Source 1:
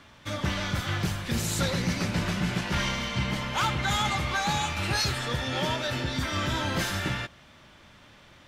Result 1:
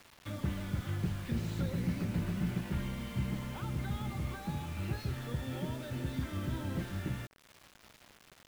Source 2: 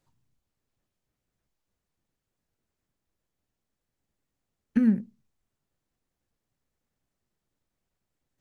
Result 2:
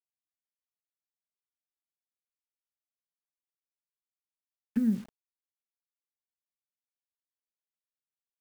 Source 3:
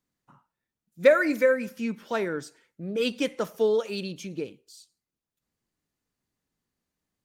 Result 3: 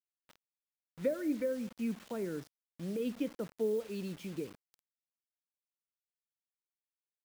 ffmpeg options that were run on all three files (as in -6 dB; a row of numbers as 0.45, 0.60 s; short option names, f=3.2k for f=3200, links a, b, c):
-filter_complex "[0:a]lowpass=3.5k,acrossover=split=420[a][b];[b]acompressor=threshold=-44dB:ratio=5[c];[a][c]amix=inputs=2:normalize=0,acrusher=bits=7:mix=0:aa=0.000001,volume=-4.5dB"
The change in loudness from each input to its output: -9.0, -5.0, -11.0 LU